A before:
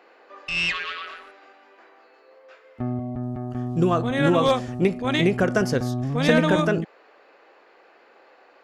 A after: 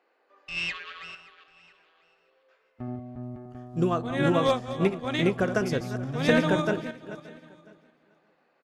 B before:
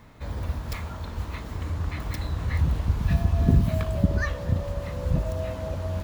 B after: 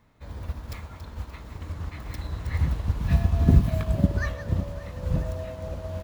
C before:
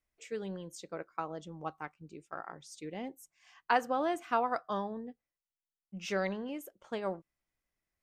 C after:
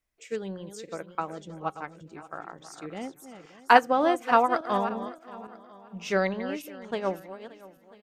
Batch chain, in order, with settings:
feedback delay that plays each chunk backwards 288 ms, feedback 44%, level −9 dB
single-tap delay 993 ms −19.5 dB
expander for the loud parts 1.5 to 1, over −41 dBFS
loudness normalisation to −27 LKFS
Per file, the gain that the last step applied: −2.5, +2.5, +11.5 decibels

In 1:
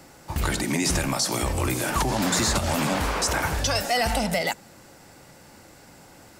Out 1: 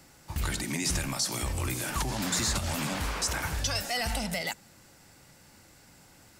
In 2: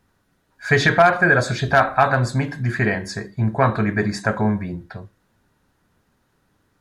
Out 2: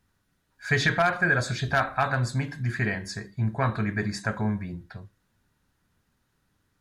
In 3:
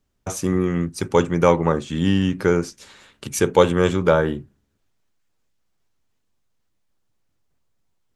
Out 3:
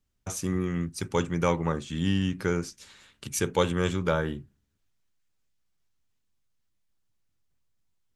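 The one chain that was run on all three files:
parametric band 540 Hz −7 dB 2.7 octaves
level −4 dB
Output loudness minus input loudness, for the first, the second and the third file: −6.0, −7.5, −8.5 LU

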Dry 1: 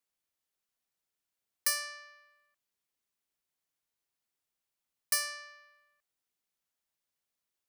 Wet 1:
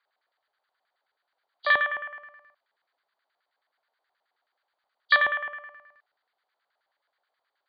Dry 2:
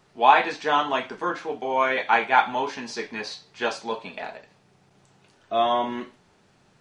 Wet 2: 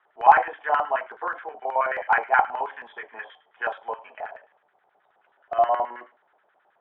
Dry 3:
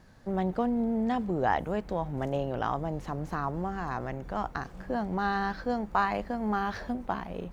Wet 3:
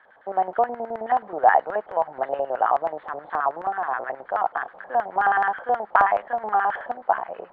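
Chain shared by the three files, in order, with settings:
hearing-aid frequency compression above 2,900 Hz 4 to 1
three-way crossover with the lows and the highs turned down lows −14 dB, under 370 Hz, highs −16 dB, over 2,200 Hz
auto-filter band-pass square 9.4 Hz 730–1,600 Hz
loudness normalisation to −24 LKFS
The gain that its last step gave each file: +23.5, +5.0, +15.0 decibels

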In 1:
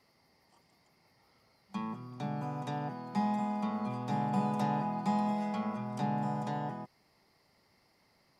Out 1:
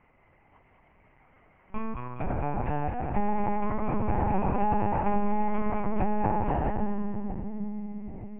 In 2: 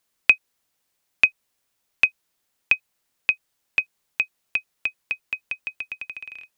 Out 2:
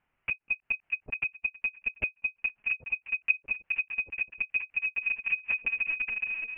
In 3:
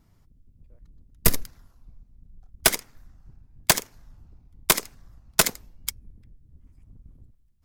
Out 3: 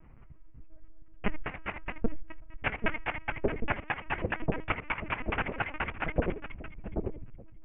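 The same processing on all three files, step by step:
on a send: echo with a time of its own for lows and highs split 550 Hz, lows 789 ms, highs 209 ms, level −5 dB
on the sum: downward compressor 10 to 1, threshold −27 dBFS
wave folding −20.5 dBFS
linear-prediction vocoder at 8 kHz pitch kept
Butterworth low-pass 2,800 Hz 72 dB per octave
normalise the peak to −12 dBFS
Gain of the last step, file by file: +7.5, +4.5, +7.5 decibels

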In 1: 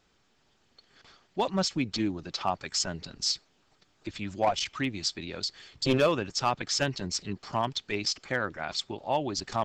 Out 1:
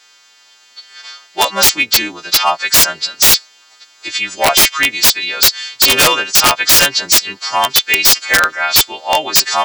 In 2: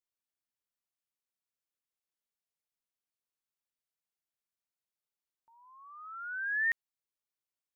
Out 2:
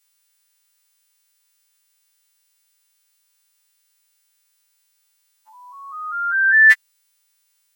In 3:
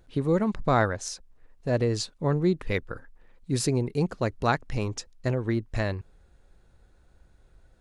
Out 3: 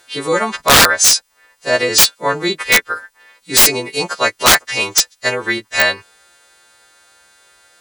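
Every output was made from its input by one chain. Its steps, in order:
every partial snapped to a pitch grid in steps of 2 semitones
high-pass filter 1,000 Hz 6 dB per octave
mid-hump overdrive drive 7 dB, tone 6,600 Hz, clips at −8 dBFS
wrap-around overflow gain 18 dB
normalise the peak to −2 dBFS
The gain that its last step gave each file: +16.0, +17.0, +16.0 decibels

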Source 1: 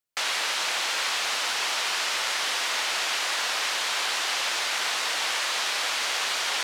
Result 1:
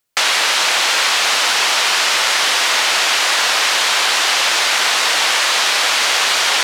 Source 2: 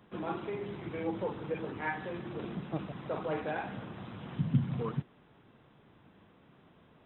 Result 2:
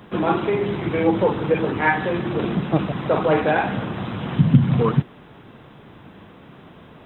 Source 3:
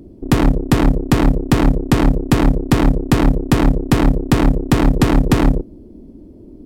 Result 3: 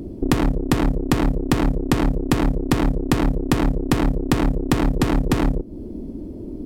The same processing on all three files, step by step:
downward compressor 5 to 1, threshold −24 dBFS
normalise the peak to −1.5 dBFS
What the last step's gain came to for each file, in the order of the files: +13.5, +16.5, +7.0 decibels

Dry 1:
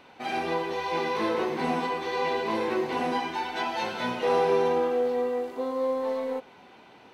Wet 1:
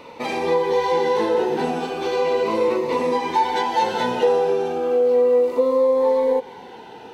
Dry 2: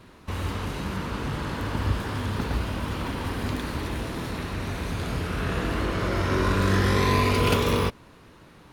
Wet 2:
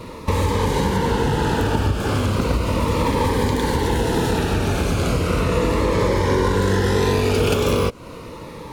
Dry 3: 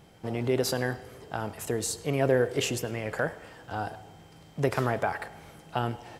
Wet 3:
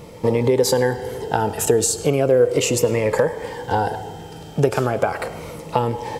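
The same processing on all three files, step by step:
dynamic equaliser 7,400 Hz, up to +5 dB, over −55 dBFS, Q 2.6
downward compressor 6 to 1, threshold −31 dBFS
hollow resonant body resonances 480/880 Hz, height 10 dB, ringing for 25 ms
phaser whose notches keep moving one way falling 0.36 Hz
loudness normalisation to −20 LKFS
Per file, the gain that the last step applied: +10.0, +14.0, +14.5 decibels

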